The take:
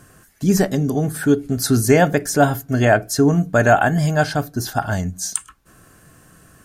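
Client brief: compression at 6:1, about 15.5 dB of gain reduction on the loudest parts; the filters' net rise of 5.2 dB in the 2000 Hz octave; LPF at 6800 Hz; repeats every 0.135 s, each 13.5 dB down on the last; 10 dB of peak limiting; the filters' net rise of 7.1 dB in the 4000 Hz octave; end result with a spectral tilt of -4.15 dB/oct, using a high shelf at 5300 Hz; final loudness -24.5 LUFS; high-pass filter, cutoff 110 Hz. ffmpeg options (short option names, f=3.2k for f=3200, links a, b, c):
-af "highpass=110,lowpass=6.8k,equalizer=f=2k:t=o:g=5.5,equalizer=f=4k:t=o:g=7,highshelf=f=5.3k:g=3.5,acompressor=threshold=-25dB:ratio=6,alimiter=limit=-19dB:level=0:latency=1,aecho=1:1:135|270:0.211|0.0444,volume=5dB"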